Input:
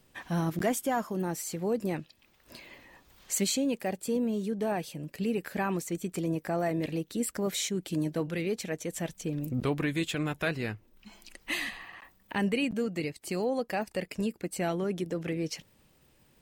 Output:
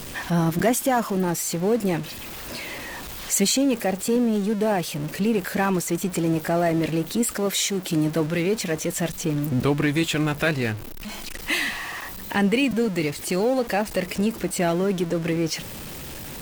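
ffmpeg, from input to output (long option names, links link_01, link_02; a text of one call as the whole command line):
ffmpeg -i in.wav -filter_complex "[0:a]aeval=exprs='val(0)+0.5*0.0133*sgn(val(0))':channel_layout=same,asettb=1/sr,asplit=3[link_01][link_02][link_03];[link_01]atrim=end=7.314[link_04];[link_02]atrim=start=7.31:end=7.9,asetpts=PTS-STARTPTS,afade=type=in:duration=0.004:curve=qsin,afade=type=out:start_time=0.586:duration=0.004:curve=qsin,lowshelf=frequency=140:gain=-11[link_05];[link_03]atrim=start=7.896[link_06];[link_04][link_05]acrossfade=duration=0.004:curve1=hsin:curve2=qsin[link_07];[link_07][link_06]acrossfade=duration=0.004:curve1=qsin:curve2=hsin,volume=7dB" out.wav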